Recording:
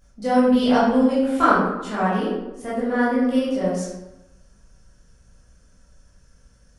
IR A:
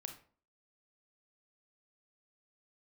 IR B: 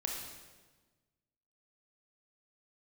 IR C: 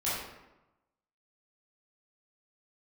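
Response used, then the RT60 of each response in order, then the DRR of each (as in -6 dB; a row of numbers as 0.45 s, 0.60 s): C; 0.45 s, 1.3 s, 1.0 s; 5.0 dB, -0.5 dB, -10.5 dB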